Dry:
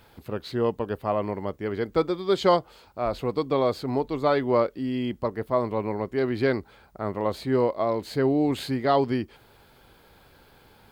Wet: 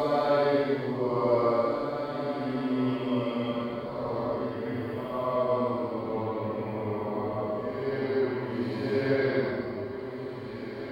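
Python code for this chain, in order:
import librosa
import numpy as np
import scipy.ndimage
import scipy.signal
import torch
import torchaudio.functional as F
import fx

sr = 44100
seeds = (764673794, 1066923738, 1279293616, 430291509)

y = fx.echo_diffused(x, sr, ms=474, feedback_pct=47, wet_db=-7.0)
y = fx.paulstretch(y, sr, seeds[0], factor=4.1, window_s=0.25, from_s=4.23)
y = y * 10.0 ** (-4.5 / 20.0)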